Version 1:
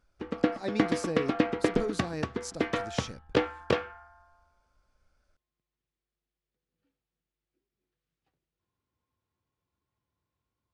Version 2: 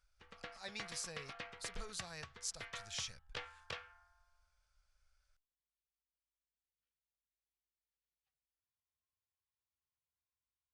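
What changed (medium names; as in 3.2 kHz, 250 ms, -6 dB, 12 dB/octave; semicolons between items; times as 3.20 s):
background -8.0 dB; master: add amplifier tone stack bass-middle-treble 10-0-10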